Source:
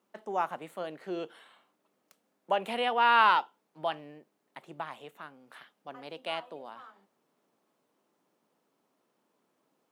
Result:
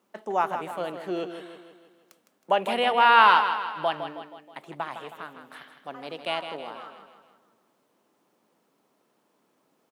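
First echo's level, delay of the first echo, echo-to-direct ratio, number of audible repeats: -9.0 dB, 0.159 s, -7.5 dB, 5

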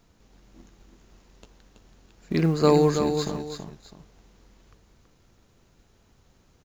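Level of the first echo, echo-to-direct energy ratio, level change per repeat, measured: -7.0 dB, -6.5 dB, -10.0 dB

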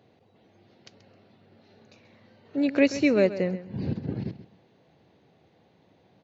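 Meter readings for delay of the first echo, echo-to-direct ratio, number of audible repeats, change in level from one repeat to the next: 0.132 s, -14.0 dB, 2, -14.0 dB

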